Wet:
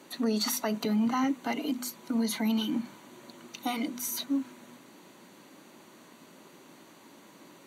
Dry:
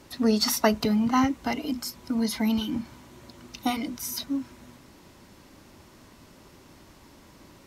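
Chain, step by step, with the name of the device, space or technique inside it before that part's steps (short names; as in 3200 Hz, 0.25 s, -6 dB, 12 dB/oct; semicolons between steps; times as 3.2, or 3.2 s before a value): PA system with an anti-feedback notch (HPF 170 Hz 24 dB/oct; Butterworth band-stop 5200 Hz, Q 6.5; limiter -20.5 dBFS, peak gain reduction 11 dB); notches 50/100/150/200/250 Hz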